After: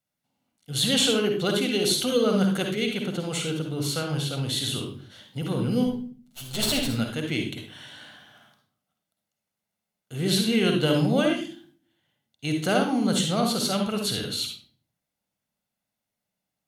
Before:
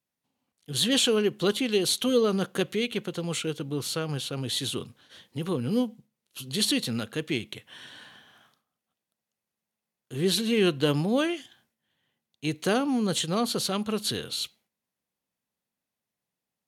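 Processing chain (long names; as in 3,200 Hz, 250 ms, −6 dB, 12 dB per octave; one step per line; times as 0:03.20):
0:05.86–0:06.88: lower of the sound and its delayed copy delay 7.9 ms
convolution reverb RT60 0.40 s, pre-delay 49 ms, DRR 3 dB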